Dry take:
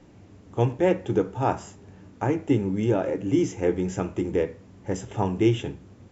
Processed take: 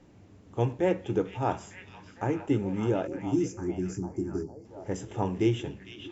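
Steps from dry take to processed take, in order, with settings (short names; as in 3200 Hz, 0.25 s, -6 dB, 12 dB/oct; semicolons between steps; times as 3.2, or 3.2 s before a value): spectral delete 3.07–4.65, 410–4300 Hz; delay with a stepping band-pass 0.453 s, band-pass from 3500 Hz, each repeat -0.7 oct, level -3.5 dB; gain -4.5 dB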